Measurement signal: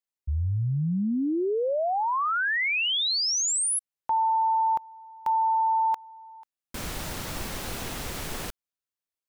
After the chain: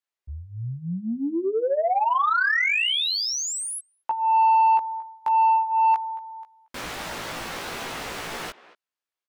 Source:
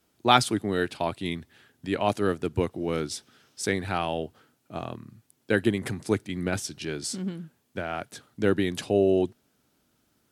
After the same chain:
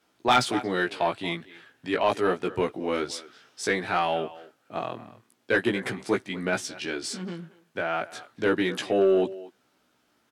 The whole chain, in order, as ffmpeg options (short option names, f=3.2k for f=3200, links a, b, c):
-filter_complex "[0:a]asplit=2[a][b];[b]adelay=230,highpass=300,lowpass=3.4k,asoftclip=type=hard:threshold=-12dB,volume=-18dB[c];[a][c]amix=inputs=2:normalize=0,flanger=delay=15.5:depth=2.5:speed=0.32,asplit=2[d][e];[e]highpass=f=720:p=1,volume=19dB,asoftclip=type=tanh:threshold=-5.5dB[f];[d][f]amix=inputs=2:normalize=0,lowpass=f=2.5k:p=1,volume=-6dB,volume=-3dB"